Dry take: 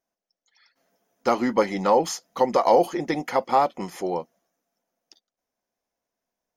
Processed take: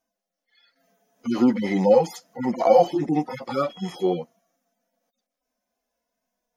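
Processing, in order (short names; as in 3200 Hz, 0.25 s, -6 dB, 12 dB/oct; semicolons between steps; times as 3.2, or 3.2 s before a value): median-filter separation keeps harmonic; 3.68–4.16 whine 3300 Hz -52 dBFS; gain +7 dB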